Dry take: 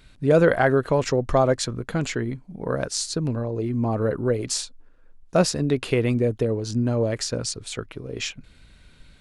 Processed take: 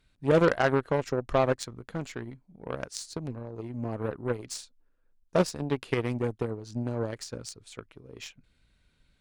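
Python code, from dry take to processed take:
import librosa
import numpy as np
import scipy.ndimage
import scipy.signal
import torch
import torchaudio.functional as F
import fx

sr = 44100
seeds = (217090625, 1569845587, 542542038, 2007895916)

y = fx.cheby_harmonics(x, sr, harmonics=(7, 8), levels_db=(-20, -44), full_scale_db=-5.5)
y = fx.doppler_dist(y, sr, depth_ms=0.18)
y = F.gain(torch.from_numpy(y), -5.0).numpy()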